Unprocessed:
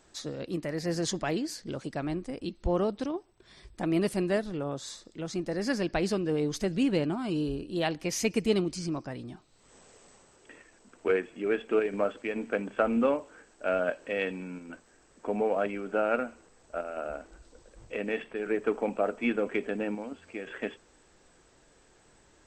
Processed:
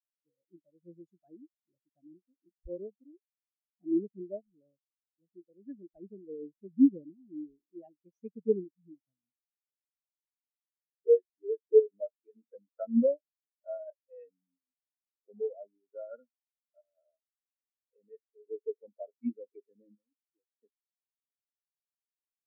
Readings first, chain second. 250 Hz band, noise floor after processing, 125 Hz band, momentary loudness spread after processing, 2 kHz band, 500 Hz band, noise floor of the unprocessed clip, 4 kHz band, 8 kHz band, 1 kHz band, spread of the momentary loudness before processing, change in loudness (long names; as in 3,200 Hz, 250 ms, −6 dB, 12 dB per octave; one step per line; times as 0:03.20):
−4.0 dB, below −85 dBFS, below −15 dB, 23 LU, below −40 dB, −3.0 dB, −62 dBFS, below −40 dB, below −35 dB, below −20 dB, 12 LU, 0.0 dB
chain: every bin expanded away from the loudest bin 4 to 1